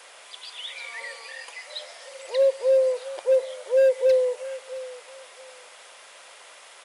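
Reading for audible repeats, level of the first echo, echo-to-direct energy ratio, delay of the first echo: 2, −16.5 dB, −16.5 dB, 668 ms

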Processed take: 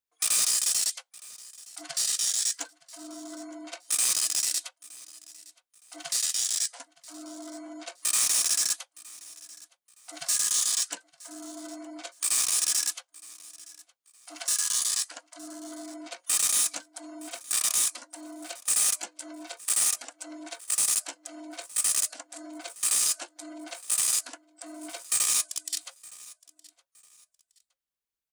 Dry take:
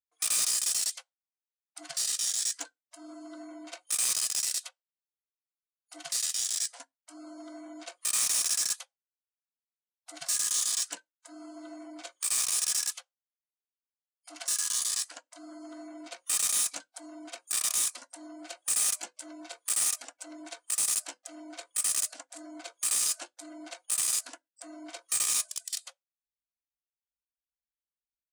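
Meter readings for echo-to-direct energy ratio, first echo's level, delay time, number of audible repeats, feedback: −21.0 dB, −21.5 dB, 916 ms, 2, 28%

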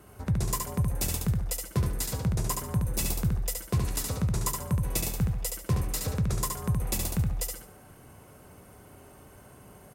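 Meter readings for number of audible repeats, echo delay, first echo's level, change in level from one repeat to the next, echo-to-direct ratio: 3, 71 ms, −4.0 dB, −10.5 dB, −3.5 dB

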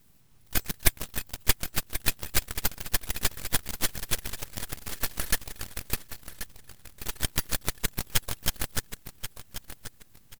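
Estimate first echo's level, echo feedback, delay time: −11.5 dB, 23%, 1,083 ms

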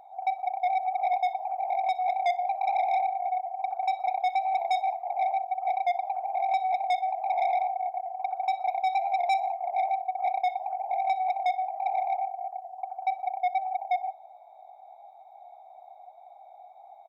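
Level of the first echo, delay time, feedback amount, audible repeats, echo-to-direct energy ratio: −23.0 dB, 61 ms, 50%, 2, −22.0 dB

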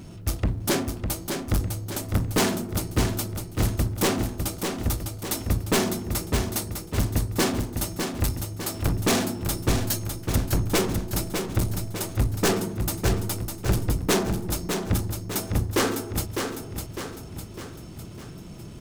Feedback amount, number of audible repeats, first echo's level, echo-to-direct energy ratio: 51%, 5, −6.0 dB, −4.5 dB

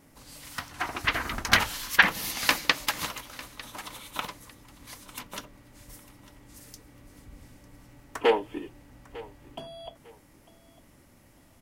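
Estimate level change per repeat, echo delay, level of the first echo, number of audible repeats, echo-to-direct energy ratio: −11.5 dB, 900 ms, −19.5 dB, 2, −19.0 dB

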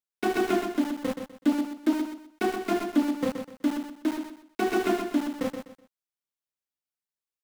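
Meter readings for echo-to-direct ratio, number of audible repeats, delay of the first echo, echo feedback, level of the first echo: −7.0 dB, 3, 125 ms, 28%, −7.5 dB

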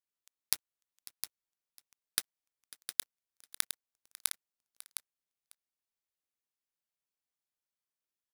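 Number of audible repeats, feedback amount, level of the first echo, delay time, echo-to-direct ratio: 3, repeats not evenly spaced, −20.0 dB, 547 ms, −9.5 dB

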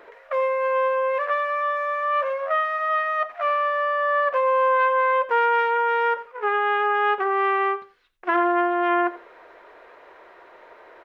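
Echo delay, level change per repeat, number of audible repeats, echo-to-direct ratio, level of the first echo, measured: 86 ms, −15.5 dB, 2, −16.5 dB, −16.5 dB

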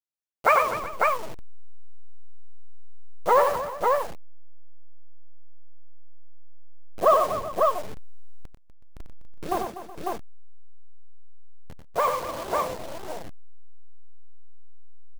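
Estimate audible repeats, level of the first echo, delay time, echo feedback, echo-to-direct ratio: 4, −5.5 dB, 93 ms, repeats not evenly spaced, −0.5 dB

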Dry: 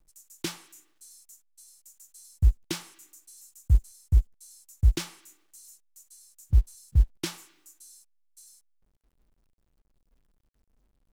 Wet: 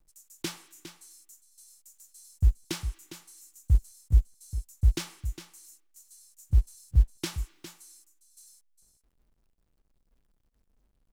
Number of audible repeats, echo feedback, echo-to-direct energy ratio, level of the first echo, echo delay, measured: 1, repeats not evenly spaced, −11.5 dB, −11.5 dB, 407 ms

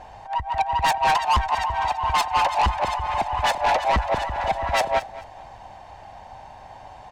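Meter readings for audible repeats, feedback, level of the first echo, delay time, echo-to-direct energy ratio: 2, 24%, −17.0 dB, 217 ms, −17.0 dB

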